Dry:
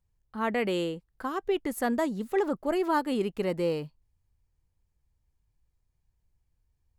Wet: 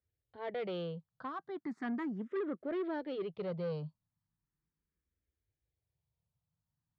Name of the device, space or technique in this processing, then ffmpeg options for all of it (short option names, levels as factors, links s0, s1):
barber-pole phaser into a guitar amplifier: -filter_complex "[0:a]asplit=2[s0][s1];[s1]afreqshift=0.37[s2];[s0][s2]amix=inputs=2:normalize=1,asoftclip=type=tanh:threshold=0.0398,highpass=100,equalizer=f=160:t=q:w=4:g=5,equalizer=f=850:t=q:w=4:g=-5,equalizer=f=2700:t=q:w=4:g=-9,lowpass=f=3700:w=0.5412,lowpass=f=3700:w=1.3066,asettb=1/sr,asplit=3[s3][s4][s5];[s3]atrim=end=1.244[s6];[s4]atrim=start=1.24:end=2.63,asetpts=PTS-STARTPTS,afade=t=in:d=0.004:c=qsin,afade=t=out:st=1.386:d=0.004:c=qsin,highpass=140[s7];[s5]atrim=start=2.626[s8];[s6][s7]acrossfade=d=0.004:c1=hsin:c2=qsin[s9];[s9][s8]acrossfade=d=0.004:c1=qsin:c2=hsin,volume=0.668"